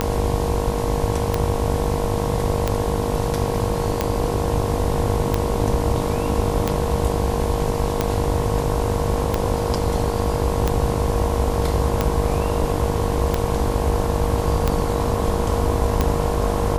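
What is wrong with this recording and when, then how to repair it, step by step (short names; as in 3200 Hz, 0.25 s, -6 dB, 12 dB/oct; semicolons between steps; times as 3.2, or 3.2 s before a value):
buzz 50 Hz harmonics 22 -25 dBFS
tick 45 rpm -5 dBFS
tone 470 Hz -26 dBFS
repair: de-click; notch 470 Hz, Q 30; de-hum 50 Hz, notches 22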